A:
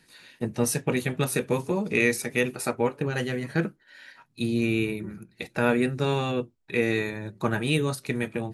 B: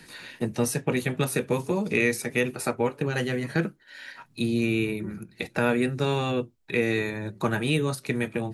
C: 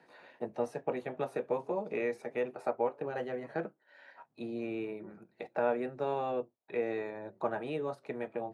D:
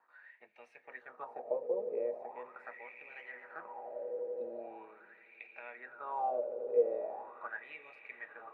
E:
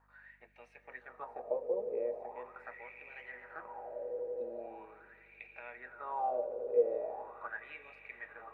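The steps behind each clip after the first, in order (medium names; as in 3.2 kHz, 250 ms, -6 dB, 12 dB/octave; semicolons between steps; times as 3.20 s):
three bands compressed up and down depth 40%
band-pass filter 680 Hz, Q 2.2
echo with a slow build-up 85 ms, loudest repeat 8, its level -17.5 dB; wah-wah 0.41 Hz 480–2400 Hz, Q 8.7; trim +6.5 dB
hum 50 Hz, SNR 33 dB; reverberation RT60 0.80 s, pre-delay 148 ms, DRR 18 dB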